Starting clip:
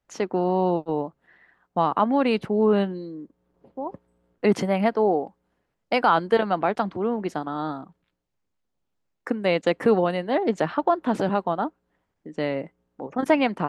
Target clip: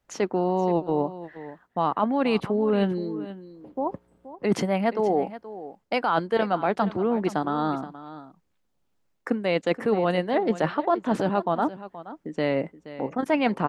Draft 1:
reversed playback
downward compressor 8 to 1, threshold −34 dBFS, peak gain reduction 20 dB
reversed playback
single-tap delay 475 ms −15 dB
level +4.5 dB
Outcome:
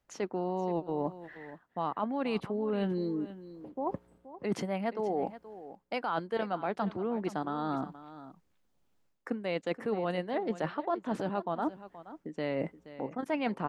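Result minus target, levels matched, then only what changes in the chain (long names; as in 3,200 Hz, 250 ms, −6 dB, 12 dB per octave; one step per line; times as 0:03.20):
downward compressor: peak gain reduction +9 dB
change: downward compressor 8 to 1, threshold −23.5 dBFS, peak gain reduction 11 dB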